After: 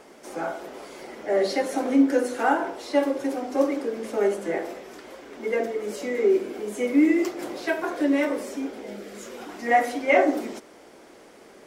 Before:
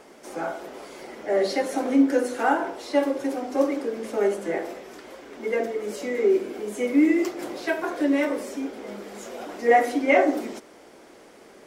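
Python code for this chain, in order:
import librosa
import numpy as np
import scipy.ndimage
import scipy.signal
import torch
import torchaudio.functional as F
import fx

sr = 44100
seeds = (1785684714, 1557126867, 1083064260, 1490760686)

y = fx.peak_eq(x, sr, hz=fx.line((8.8, 1300.0), (10.12, 270.0)), db=-13.0, octaves=0.36, at=(8.8, 10.12), fade=0.02)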